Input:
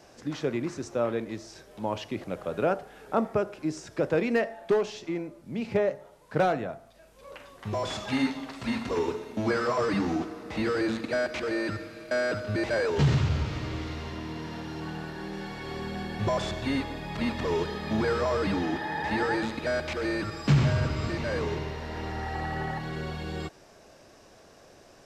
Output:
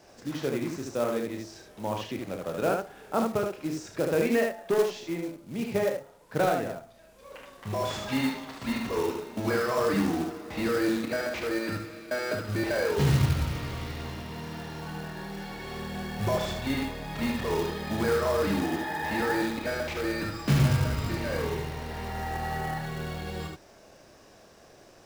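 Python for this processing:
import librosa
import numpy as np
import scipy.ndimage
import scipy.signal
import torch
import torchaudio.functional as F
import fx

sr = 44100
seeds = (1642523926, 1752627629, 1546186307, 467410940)

y = fx.room_early_taps(x, sr, ms=(30, 75), db=(-7.0, -4.0))
y = fx.quant_float(y, sr, bits=2)
y = y * librosa.db_to_amplitude(-2.0)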